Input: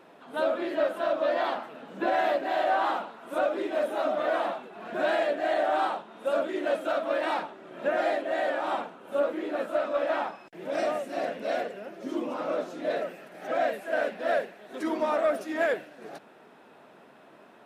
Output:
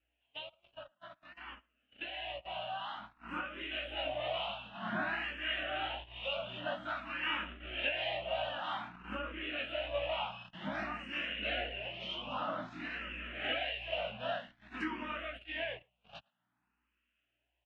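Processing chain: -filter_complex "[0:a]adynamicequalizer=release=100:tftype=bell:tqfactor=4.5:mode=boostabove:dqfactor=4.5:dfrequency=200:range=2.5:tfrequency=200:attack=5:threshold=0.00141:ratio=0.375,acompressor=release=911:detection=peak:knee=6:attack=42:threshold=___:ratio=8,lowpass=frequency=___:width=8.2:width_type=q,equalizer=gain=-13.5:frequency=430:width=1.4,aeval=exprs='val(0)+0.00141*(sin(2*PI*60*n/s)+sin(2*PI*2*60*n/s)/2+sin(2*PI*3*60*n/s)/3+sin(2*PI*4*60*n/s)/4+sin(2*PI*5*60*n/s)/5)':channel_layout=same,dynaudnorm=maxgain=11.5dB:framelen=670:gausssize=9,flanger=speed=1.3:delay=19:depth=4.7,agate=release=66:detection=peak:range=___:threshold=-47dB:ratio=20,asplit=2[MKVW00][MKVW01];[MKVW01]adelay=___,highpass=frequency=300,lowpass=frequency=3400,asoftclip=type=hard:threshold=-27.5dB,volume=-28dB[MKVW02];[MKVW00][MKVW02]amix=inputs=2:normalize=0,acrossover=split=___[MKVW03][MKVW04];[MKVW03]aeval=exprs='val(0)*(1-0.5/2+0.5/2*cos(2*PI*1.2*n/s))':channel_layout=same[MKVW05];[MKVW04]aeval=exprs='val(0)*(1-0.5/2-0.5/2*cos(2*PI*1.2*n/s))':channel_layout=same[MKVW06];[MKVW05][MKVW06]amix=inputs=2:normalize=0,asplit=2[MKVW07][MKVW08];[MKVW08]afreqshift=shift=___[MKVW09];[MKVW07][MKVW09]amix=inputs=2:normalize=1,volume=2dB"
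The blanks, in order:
-38dB, 2900, -27dB, 110, 1900, 0.52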